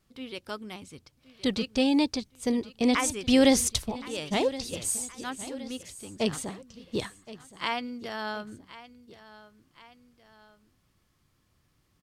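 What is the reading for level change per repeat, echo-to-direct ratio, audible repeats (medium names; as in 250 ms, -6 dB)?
-6.0 dB, -16.0 dB, 2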